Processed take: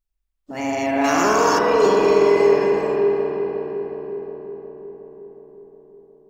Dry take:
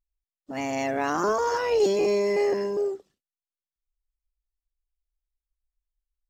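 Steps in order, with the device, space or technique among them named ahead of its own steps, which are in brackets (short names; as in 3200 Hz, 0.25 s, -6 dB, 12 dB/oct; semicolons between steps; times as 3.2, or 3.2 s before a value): dub delay into a spring reverb (darkening echo 0.363 s, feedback 70%, low-pass 1700 Hz, level -4 dB; spring tank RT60 3.1 s, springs 47 ms, chirp 75 ms, DRR -2.5 dB); 1.04–1.59 high shelf 2900 Hz +12 dB; gain +2.5 dB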